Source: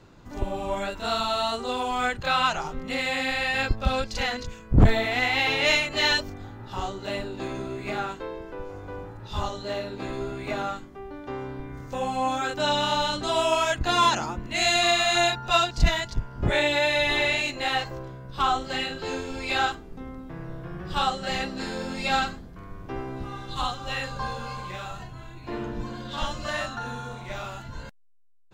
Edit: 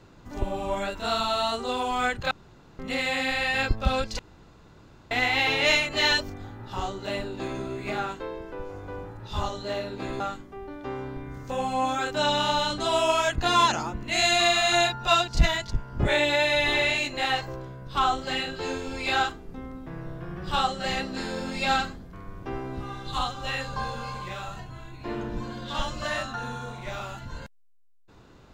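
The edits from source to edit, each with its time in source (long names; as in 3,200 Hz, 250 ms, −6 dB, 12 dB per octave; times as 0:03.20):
0:02.31–0:02.79: fill with room tone
0:04.19–0:05.11: fill with room tone
0:10.20–0:10.63: remove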